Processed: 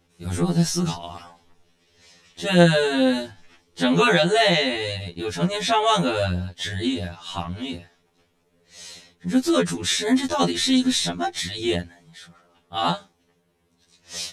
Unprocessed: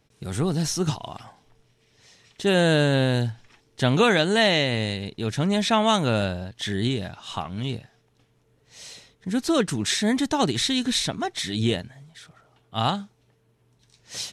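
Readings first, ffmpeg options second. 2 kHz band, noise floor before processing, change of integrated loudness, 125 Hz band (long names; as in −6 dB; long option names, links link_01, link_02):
+1.5 dB, −64 dBFS, +1.5 dB, −0.5 dB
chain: -af "afftfilt=real='re*2*eq(mod(b,4),0)':imag='im*2*eq(mod(b,4),0)':win_size=2048:overlap=0.75,volume=4dB"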